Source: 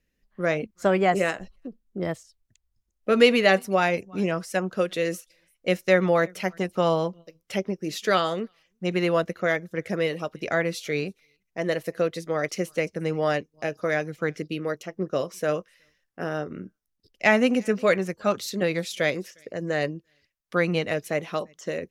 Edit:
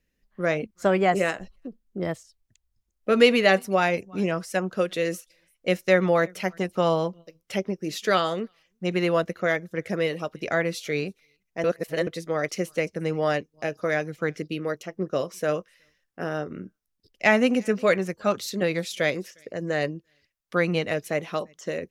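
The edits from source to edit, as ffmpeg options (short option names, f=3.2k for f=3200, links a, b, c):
-filter_complex "[0:a]asplit=3[a][b][c];[a]atrim=end=11.642[d];[b]atrim=start=11.638:end=12.072,asetpts=PTS-STARTPTS,areverse[e];[c]atrim=start=12.068[f];[d][e]acrossfade=d=0.004:c1=hsin:c2=hsin[g];[g][f]acrossfade=d=0.004:c1=hsin:c2=hsin"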